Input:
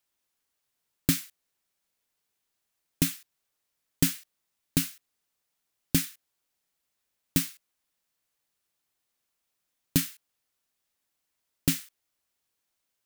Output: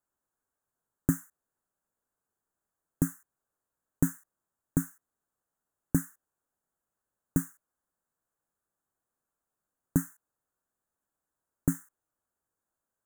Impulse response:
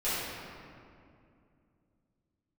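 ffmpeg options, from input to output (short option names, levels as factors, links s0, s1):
-af "asuperstop=centerf=3400:order=12:qfactor=0.69,highshelf=f=6000:g=-10.5"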